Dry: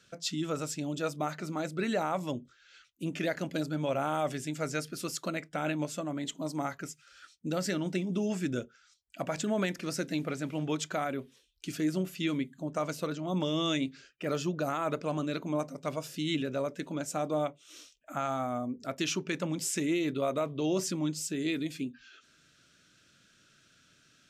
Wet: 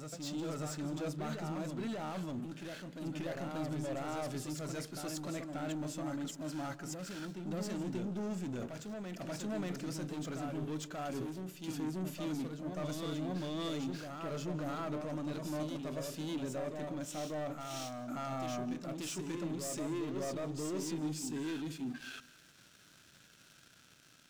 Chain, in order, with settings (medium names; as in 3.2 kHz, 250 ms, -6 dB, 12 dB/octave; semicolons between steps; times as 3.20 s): dynamic bell 2.2 kHz, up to -5 dB, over -53 dBFS, Q 1.7; waveshaping leveller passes 3; reverse; compression 5:1, threshold -44 dBFS, peak gain reduction 18.5 dB; reverse; harmonic-percussive split harmonic +6 dB; reverse echo 584 ms -4.5 dB; on a send at -17 dB: reverberation, pre-delay 148 ms; on the sum: trim -2 dB